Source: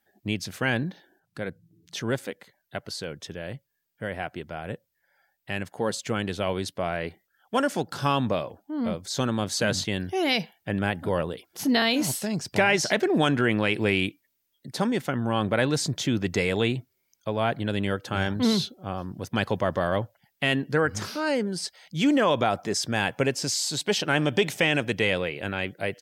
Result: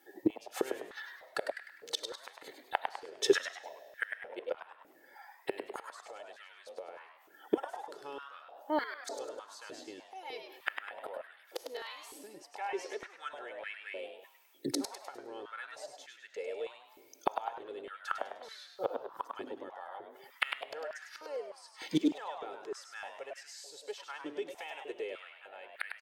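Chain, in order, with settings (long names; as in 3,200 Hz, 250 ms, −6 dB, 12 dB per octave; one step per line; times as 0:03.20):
comb filter 2.3 ms, depth 68%
gate with flip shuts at −24 dBFS, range −31 dB
echo with shifted repeats 101 ms, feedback 37%, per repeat +140 Hz, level −6.5 dB
comb and all-pass reverb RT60 2.1 s, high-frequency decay 0.85×, pre-delay 0 ms, DRR 15.5 dB
high-pass on a step sequencer 3.3 Hz 310–1,700 Hz
level +6 dB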